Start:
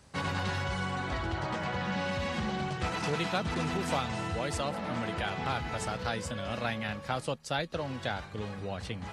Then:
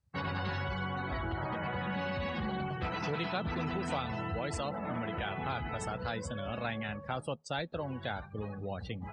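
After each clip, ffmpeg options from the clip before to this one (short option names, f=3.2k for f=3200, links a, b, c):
-filter_complex "[0:a]afftdn=nr=29:nf=-42,asplit=2[a][b];[b]alimiter=level_in=3dB:limit=-24dB:level=0:latency=1,volume=-3dB,volume=-1.5dB[c];[a][c]amix=inputs=2:normalize=0,volume=-6.5dB"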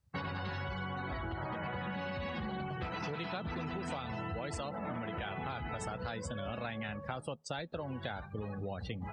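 -af "acompressor=threshold=-38dB:ratio=6,volume=2.5dB"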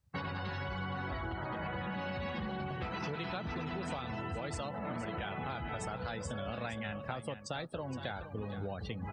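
-af "aecho=1:1:467:0.282"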